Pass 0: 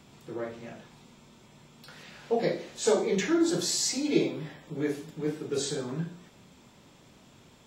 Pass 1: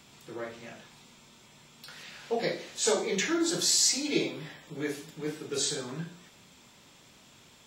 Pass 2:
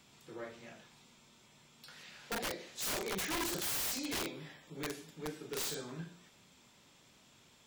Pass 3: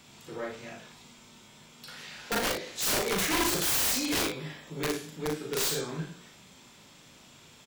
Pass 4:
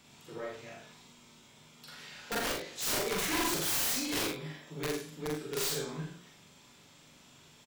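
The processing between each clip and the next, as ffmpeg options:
-af "tiltshelf=f=1.1k:g=-5"
-af "aeval=exprs='0.282*(cos(1*acos(clip(val(0)/0.282,-1,1)))-cos(1*PI/2))+0.0398*(cos(2*acos(clip(val(0)/0.282,-1,1)))-cos(2*PI/2))':c=same,aeval=exprs='(mod(15.8*val(0)+1,2)-1)/15.8':c=same,volume=-7dB"
-af "aecho=1:1:38|58:0.562|0.398,volume=7.5dB"
-filter_complex "[0:a]asplit=2[a][b];[b]adelay=45,volume=-4dB[c];[a][c]amix=inputs=2:normalize=0,volume=-5.5dB"

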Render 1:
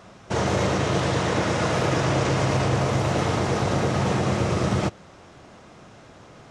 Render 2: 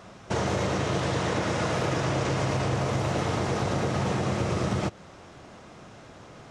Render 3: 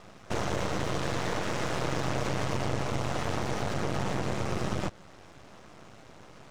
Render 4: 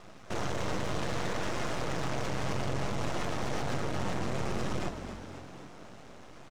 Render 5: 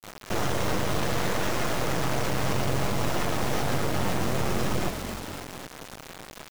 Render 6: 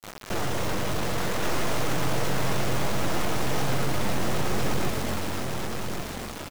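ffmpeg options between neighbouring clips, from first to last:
-af "acompressor=threshold=-25dB:ratio=2.5"
-af "aeval=exprs='max(val(0),0)':c=same"
-filter_complex "[0:a]asplit=8[a][b][c][d][e][f][g][h];[b]adelay=255,afreqshift=45,volume=-11.5dB[i];[c]adelay=510,afreqshift=90,volume=-15.9dB[j];[d]adelay=765,afreqshift=135,volume=-20.4dB[k];[e]adelay=1020,afreqshift=180,volume=-24.8dB[l];[f]adelay=1275,afreqshift=225,volume=-29.2dB[m];[g]adelay=1530,afreqshift=270,volume=-33.7dB[n];[h]adelay=1785,afreqshift=315,volume=-38.1dB[o];[a][i][j][k][l][m][n][o]amix=inputs=8:normalize=0,alimiter=limit=-21.5dB:level=0:latency=1:release=19,flanger=delay=2.8:depth=7.3:regen=83:speed=0.62:shape=sinusoidal,volume=3.5dB"
-af "acrusher=bits=6:mix=0:aa=0.000001,volume=6dB"
-af "asoftclip=type=tanh:threshold=-21.5dB,aecho=1:1:1125:0.596,volume=2.5dB"

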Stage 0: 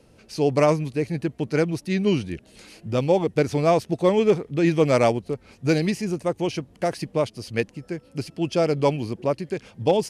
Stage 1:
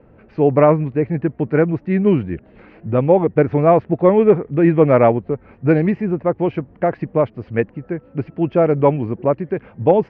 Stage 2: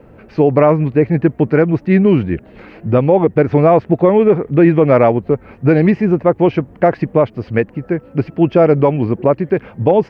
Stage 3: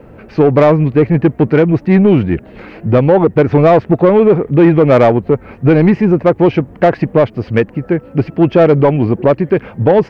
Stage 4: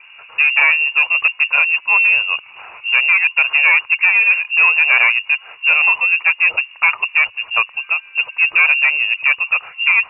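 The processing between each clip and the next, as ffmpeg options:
-af "lowpass=f=1.9k:w=0.5412,lowpass=f=1.9k:w=1.3066,volume=6.5dB"
-af "bass=f=250:g=-1,treble=f=4k:g=11,alimiter=limit=-9dB:level=0:latency=1:release=145,volume=7dB"
-af "acontrast=43,volume=-1dB"
-af "lowpass=f=2.5k:t=q:w=0.5098,lowpass=f=2.5k:t=q:w=0.6013,lowpass=f=2.5k:t=q:w=0.9,lowpass=f=2.5k:t=q:w=2.563,afreqshift=-2900,equalizer=f=100:t=o:w=0.67:g=8,equalizer=f=250:t=o:w=0.67:g=-10,equalizer=f=1k:t=o:w=0.67:g=11,volume=-5.5dB"

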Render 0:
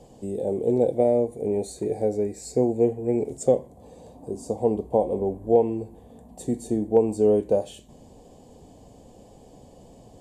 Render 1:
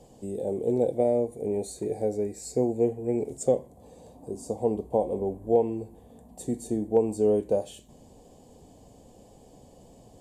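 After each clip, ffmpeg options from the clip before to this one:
-af "highshelf=f=7.5k:g=6,volume=-3.5dB"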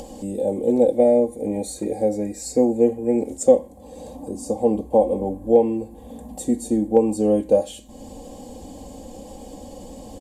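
-af "aecho=1:1:3.7:0.77,acompressor=mode=upward:threshold=-35dB:ratio=2.5,volume=5.5dB"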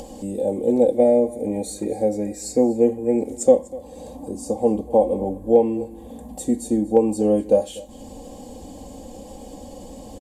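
-af "aecho=1:1:245:0.1"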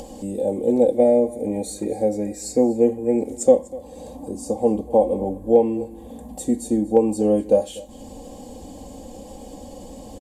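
-af anull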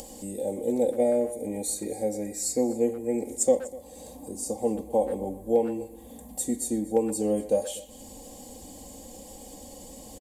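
-filter_complex "[0:a]equalizer=f=2k:t=o:w=0.22:g=6.5,crystalizer=i=3:c=0,asplit=2[a][b];[b]adelay=120,highpass=300,lowpass=3.4k,asoftclip=type=hard:threshold=-10dB,volume=-13dB[c];[a][c]amix=inputs=2:normalize=0,volume=-8dB"

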